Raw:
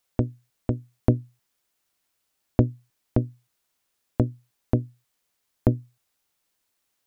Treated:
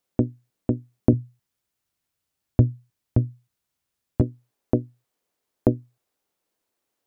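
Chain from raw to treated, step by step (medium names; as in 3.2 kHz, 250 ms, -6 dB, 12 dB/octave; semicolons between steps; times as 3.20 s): peaking EQ 270 Hz +11 dB 2.5 oct, from 1.13 s 93 Hz, from 4.21 s 410 Hz; trim -6 dB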